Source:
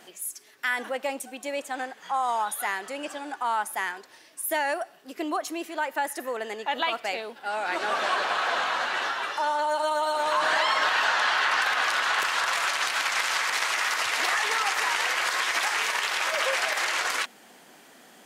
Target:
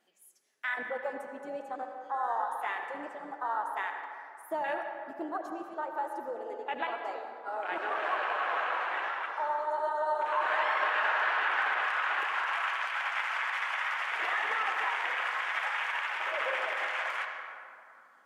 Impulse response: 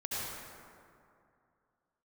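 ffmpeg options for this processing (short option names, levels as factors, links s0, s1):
-filter_complex "[0:a]flanger=delay=3.5:depth=5.2:regen=-61:speed=1.1:shape=sinusoidal,afwtdn=0.0251,asplit=2[s0][s1];[1:a]atrim=start_sample=2205,lowpass=5200,lowshelf=f=160:g=-11.5[s2];[s1][s2]afir=irnorm=-1:irlink=0,volume=0.531[s3];[s0][s3]amix=inputs=2:normalize=0,volume=0.631"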